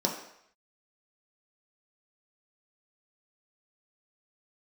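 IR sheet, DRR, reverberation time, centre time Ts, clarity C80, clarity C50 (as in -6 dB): -1.0 dB, 0.70 s, 30 ms, 9.0 dB, 6.5 dB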